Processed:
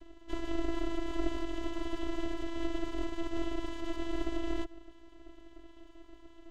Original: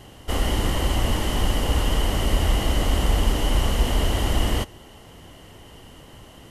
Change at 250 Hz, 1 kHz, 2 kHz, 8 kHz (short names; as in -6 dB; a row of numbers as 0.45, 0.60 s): -6.5, -14.5, -14.5, -23.5 dB